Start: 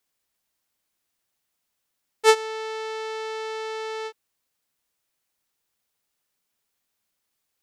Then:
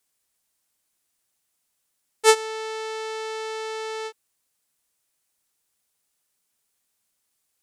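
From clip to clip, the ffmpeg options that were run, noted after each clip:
ffmpeg -i in.wav -af "equalizer=frequency=9100:width_type=o:width=1.1:gain=7.5" out.wav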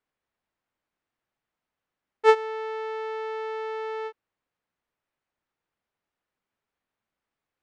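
ffmpeg -i in.wav -af "lowpass=1900" out.wav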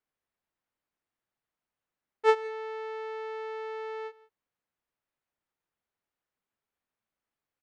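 ffmpeg -i in.wav -af "aecho=1:1:170:0.0891,volume=-5dB" out.wav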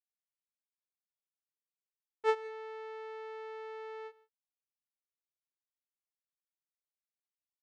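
ffmpeg -i in.wav -af "agate=range=-33dB:threshold=-50dB:ratio=3:detection=peak,volume=-7dB" out.wav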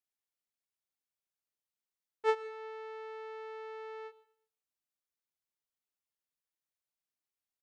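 ffmpeg -i in.wav -af "aecho=1:1:122|244|366:0.0841|0.0303|0.0109" out.wav

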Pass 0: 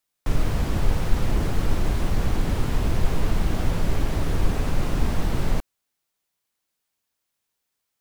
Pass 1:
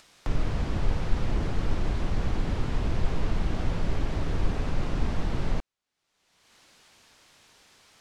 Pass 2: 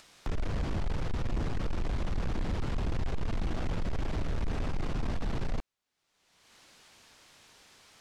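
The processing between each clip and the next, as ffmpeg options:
ffmpeg -i in.wav -af "lowpass=5800,acompressor=mode=upward:threshold=-29dB:ratio=2.5,volume=-4.5dB" out.wav
ffmpeg -i in.wav -af "asoftclip=type=tanh:threshold=-25.5dB" out.wav

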